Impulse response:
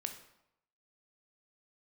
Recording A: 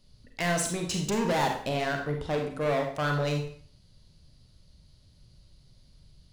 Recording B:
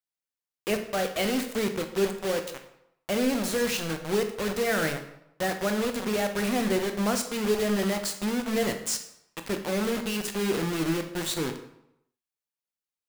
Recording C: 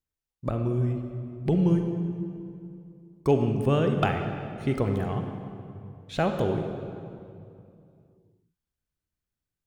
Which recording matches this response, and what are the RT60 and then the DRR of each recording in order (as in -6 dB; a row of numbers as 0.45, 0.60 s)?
B; 0.50, 0.80, 2.6 s; 2.5, 6.0, 5.0 dB